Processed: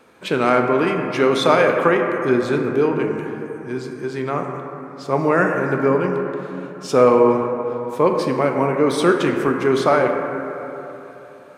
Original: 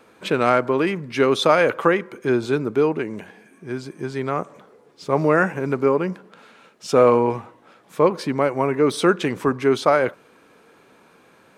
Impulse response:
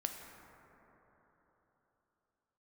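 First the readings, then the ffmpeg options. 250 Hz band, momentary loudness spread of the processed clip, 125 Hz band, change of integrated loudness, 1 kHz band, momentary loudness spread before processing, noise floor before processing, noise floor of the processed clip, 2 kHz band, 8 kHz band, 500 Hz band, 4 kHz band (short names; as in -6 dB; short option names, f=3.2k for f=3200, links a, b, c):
+2.5 dB, 14 LU, +2.0 dB, +1.5 dB, +2.5 dB, 15 LU, -54 dBFS, -40 dBFS, +2.0 dB, n/a, +2.0 dB, +0.5 dB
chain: -filter_complex "[1:a]atrim=start_sample=2205,asetrate=52920,aresample=44100[a];[0:a][a]afir=irnorm=-1:irlink=0,volume=3dB"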